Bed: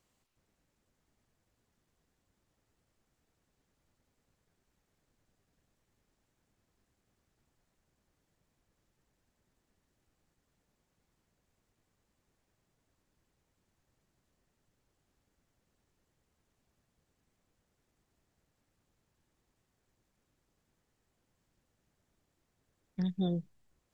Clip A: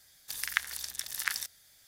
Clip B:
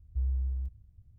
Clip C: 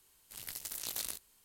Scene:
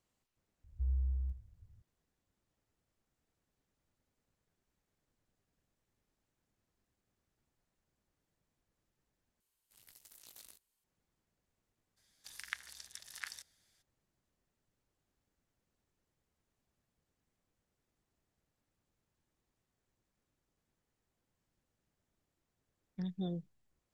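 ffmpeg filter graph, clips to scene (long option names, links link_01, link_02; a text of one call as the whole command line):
ffmpeg -i bed.wav -i cue0.wav -i cue1.wav -i cue2.wav -filter_complex "[0:a]volume=-6.5dB[link_01];[2:a]aecho=1:1:78:0.2[link_02];[1:a]lowpass=9500[link_03];[link_01]asplit=2[link_04][link_05];[link_04]atrim=end=9.404[link_06];[3:a]atrim=end=1.44,asetpts=PTS-STARTPTS,volume=-18dB[link_07];[link_05]atrim=start=10.836[link_08];[link_02]atrim=end=1.18,asetpts=PTS-STARTPTS,volume=-5dB,afade=type=in:duration=0.004:curve=hsin,afade=type=out:start_time=1.176:duration=0.004:curve=hsin,adelay=640[link_09];[link_03]atrim=end=1.87,asetpts=PTS-STARTPTS,volume=-12dB,afade=type=in:duration=0.02,afade=type=out:start_time=1.85:duration=0.02,adelay=11960[link_10];[link_06][link_07]acrossfade=duration=0.004:curve1=hsin:curve2=hsin[link_11];[link_11][link_08]acrossfade=duration=0.004:curve1=hsin:curve2=hsin[link_12];[link_12][link_09][link_10]amix=inputs=3:normalize=0" out.wav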